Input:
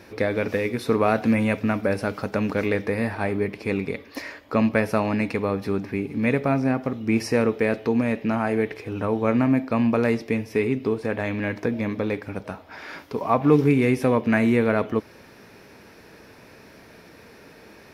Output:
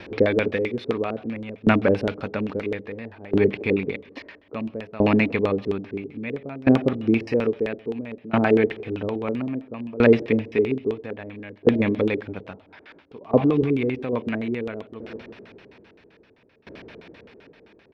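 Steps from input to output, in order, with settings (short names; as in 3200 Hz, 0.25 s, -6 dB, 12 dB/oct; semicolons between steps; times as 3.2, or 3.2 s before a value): 13.44–14.13 level quantiser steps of 12 dB; feedback echo 0.176 s, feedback 55%, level -23.5 dB; LFO low-pass square 7.7 Hz 420–3200 Hz; dB-ramp tremolo decaying 0.6 Hz, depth 22 dB; gain +5.5 dB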